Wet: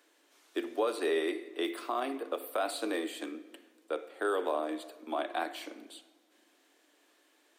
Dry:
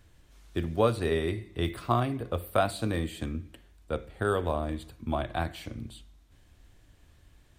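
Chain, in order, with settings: steep high-pass 290 Hz 48 dB/oct; limiter -21.5 dBFS, peak gain reduction 9.5 dB; shoebox room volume 2100 m³, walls mixed, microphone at 0.38 m

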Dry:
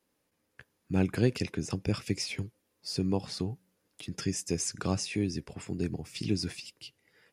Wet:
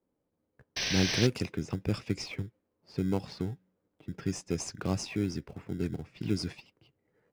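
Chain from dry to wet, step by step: low-pass opened by the level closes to 840 Hz, open at -24.5 dBFS; painted sound noise, 0.76–1.27, 1500–6200 Hz -30 dBFS; in parallel at -11 dB: sample-and-hold 25×; on the sum: gain -2.5 dB

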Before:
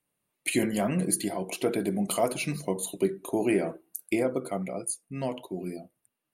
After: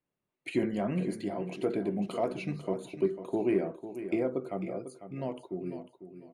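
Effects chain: bell 370 Hz +4 dB 0.23 oct; in parallel at -10.5 dB: overloaded stage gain 18.5 dB; on the sum: tape spacing loss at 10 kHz 23 dB; feedback echo 0.498 s, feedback 23%, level -11.5 dB; gain -5.5 dB

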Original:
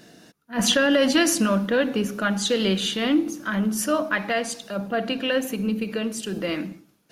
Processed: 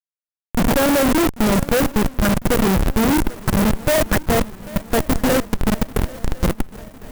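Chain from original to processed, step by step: CVSD 32 kbps; 3.59–4.02 bell 590 Hz +13 dB 0.67 oct; requantised 6-bit, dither triangular; Schmitt trigger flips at -18.5 dBFS; swung echo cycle 1.054 s, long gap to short 3:1, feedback 57%, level -20 dB; clock jitter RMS 0.051 ms; gain +8 dB

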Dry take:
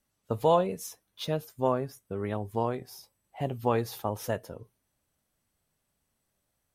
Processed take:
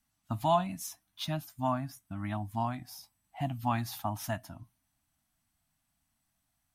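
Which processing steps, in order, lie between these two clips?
Chebyshev band-stop 300–670 Hz, order 3

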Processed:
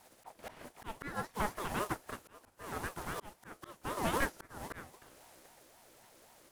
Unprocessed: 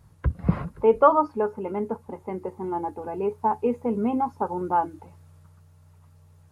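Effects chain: spectral contrast lowered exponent 0.47; auto swell 0.514 s; ring modulator with a swept carrier 630 Hz, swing 35%, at 3.8 Hz; gain -4.5 dB

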